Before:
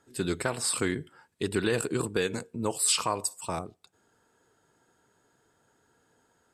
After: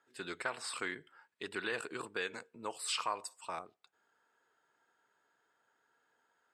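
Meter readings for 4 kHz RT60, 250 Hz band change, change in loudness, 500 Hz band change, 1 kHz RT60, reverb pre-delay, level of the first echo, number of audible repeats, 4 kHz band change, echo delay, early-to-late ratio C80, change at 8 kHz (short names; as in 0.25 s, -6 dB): none, -16.5 dB, -10.5 dB, -12.5 dB, none, none, none, none, -8.5 dB, none, none, -15.5 dB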